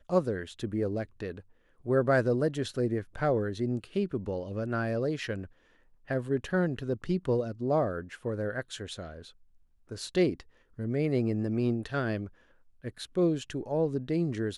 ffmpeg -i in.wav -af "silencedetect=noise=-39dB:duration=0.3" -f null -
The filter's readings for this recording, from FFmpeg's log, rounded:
silence_start: 1.40
silence_end: 1.86 | silence_duration: 0.46
silence_start: 5.45
silence_end: 6.09 | silence_duration: 0.64
silence_start: 9.22
silence_end: 9.91 | silence_duration: 0.69
silence_start: 10.40
silence_end: 10.79 | silence_duration: 0.38
silence_start: 12.27
silence_end: 12.84 | silence_duration: 0.57